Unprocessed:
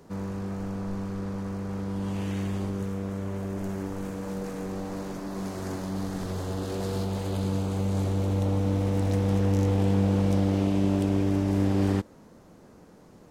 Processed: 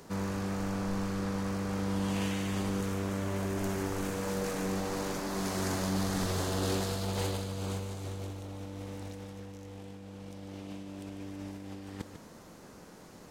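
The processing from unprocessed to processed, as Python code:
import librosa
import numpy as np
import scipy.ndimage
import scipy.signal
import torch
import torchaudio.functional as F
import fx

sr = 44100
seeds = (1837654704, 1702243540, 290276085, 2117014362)

p1 = fx.tilt_shelf(x, sr, db=-4.5, hz=1100.0)
p2 = fx.over_compress(p1, sr, threshold_db=-34.0, ratio=-0.5)
y = p2 + fx.echo_single(p2, sr, ms=147, db=-10.0, dry=0)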